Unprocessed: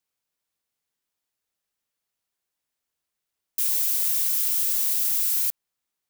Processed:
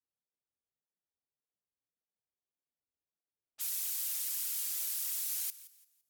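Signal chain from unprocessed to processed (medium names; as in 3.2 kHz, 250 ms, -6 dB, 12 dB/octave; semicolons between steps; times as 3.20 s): level-controlled noise filter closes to 670 Hz, open at -23.5 dBFS; thinning echo 169 ms, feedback 31%, level -17 dB; cancelling through-zero flanger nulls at 1.7 Hz, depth 6.9 ms; trim -5.5 dB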